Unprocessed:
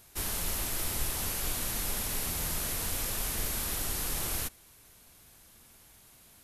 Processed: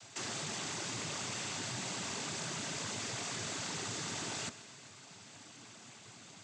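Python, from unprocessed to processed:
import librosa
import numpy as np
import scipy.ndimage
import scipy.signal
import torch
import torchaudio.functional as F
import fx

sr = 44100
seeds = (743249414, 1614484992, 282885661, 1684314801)

p1 = fx.noise_vocoder(x, sr, seeds[0], bands=16)
p2 = fx.notch(p1, sr, hz=500.0, q=12.0)
p3 = fx.over_compress(p2, sr, threshold_db=-45.0, ratio=-0.5)
p4 = p2 + (p3 * librosa.db_to_amplitude(1.5))
p5 = fx.echo_feedback(p4, sr, ms=129, feedback_pct=59, wet_db=-17.0)
y = p5 * librosa.db_to_amplitude(-4.0)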